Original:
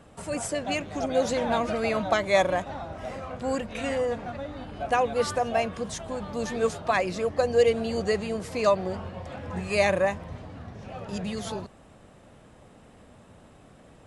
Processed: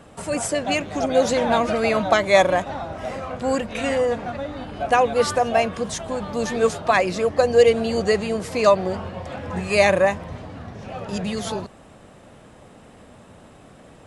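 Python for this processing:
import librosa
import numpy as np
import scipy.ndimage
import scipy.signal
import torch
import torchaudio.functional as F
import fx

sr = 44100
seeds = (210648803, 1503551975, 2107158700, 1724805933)

y = fx.low_shelf(x, sr, hz=110.0, db=-4.5)
y = F.gain(torch.from_numpy(y), 6.5).numpy()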